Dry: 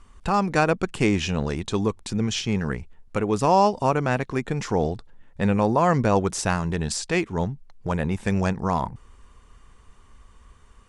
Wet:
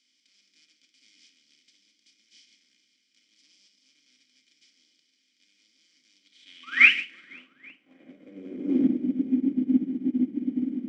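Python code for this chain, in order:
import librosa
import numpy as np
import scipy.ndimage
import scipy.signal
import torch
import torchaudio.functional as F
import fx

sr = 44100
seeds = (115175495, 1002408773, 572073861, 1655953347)

p1 = fx.bin_compress(x, sr, power=0.2)
p2 = fx.vowel_filter(p1, sr, vowel='i')
p3 = fx.bass_treble(p2, sr, bass_db=6, treble_db=14)
p4 = fx.spec_paint(p3, sr, seeds[0], shape='rise', start_s=6.63, length_s=0.29, low_hz=1100.0, high_hz=3200.0, level_db=-21.0)
p5 = fx.filter_sweep_bandpass(p4, sr, from_hz=5000.0, to_hz=270.0, start_s=6.12, end_s=8.92, q=3.4)
p6 = p5 + fx.echo_multitap(p5, sr, ms=(144, 506, 830), db=(-8.0, -14.0, -13.5), dry=0)
p7 = fx.room_shoebox(p6, sr, seeds[1], volume_m3=1000.0, walls='furnished', distance_m=2.2)
p8 = fx.upward_expand(p7, sr, threshold_db=-42.0, expansion=2.5)
y = p8 * 10.0 ** (9.0 / 20.0)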